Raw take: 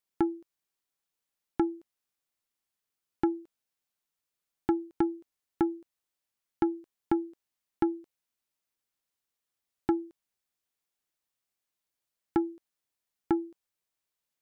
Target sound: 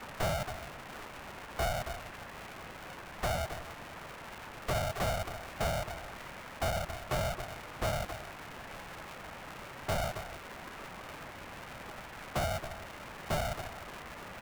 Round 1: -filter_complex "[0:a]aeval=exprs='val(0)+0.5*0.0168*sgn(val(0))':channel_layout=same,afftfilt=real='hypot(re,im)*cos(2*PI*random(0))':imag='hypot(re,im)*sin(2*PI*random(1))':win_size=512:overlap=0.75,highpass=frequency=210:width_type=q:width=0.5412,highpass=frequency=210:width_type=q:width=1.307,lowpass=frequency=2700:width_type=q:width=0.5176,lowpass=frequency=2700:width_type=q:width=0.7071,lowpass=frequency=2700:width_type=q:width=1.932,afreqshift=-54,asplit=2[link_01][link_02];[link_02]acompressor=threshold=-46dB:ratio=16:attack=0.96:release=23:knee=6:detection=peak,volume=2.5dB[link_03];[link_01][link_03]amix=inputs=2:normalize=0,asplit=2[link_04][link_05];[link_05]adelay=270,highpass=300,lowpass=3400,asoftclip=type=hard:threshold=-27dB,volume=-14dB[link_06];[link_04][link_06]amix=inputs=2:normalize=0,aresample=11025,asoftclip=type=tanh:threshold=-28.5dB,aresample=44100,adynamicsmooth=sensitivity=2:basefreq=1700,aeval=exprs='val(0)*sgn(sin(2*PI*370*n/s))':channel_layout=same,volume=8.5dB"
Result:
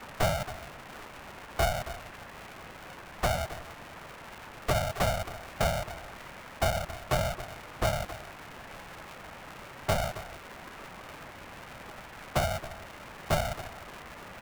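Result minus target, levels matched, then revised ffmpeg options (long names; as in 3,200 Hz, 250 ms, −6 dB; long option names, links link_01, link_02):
soft clipping: distortion −6 dB
-filter_complex "[0:a]aeval=exprs='val(0)+0.5*0.0168*sgn(val(0))':channel_layout=same,afftfilt=real='hypot(re,im)*cos(2*PI*random(0))':imag='hypot(re,im)*sin(2*PI*random(1))':win_size=512:overlap=0.75,highpass=frequency=210:width_type=q:width=0.5412,highpass=frequency=210:width_type=q:width=1.307,lowpass=frequency=2700:width_type=q:width=0.5176,lowpass=frequency=2700:width_type=q:width=0.7071,lowpass=frequency=2700:width_type=q:width=1.932,afreqshift=-54,asplit=2[link_01][link_02];[link_02]acompressor=threshold=-46dB:ratio=16:attack=0.96:release=23:knee=6:detection=peak,volume=2.5dB[link_03];[link_01][link_03]amix=inputs=2:normalize=0,asplit=2[link_04][link_05];[link_05]adelay=270,highpass=300,lowpass=3400,asoftclip=type=hard:threshold=-27dB,volume=-14dB[link_06];[link_04][link_06]amix=inputs=2:normalize=0,aresample=11025,asoftclip=type=tanh:threshold=-36.5dB,aresample=44100,adynamicsmooth=sensitivity=2:basefreq=1700,aeval=exprs='val(0)*sgn(sin(2*PI*370*n/s))':channel_layout=same,volume=8.5dB"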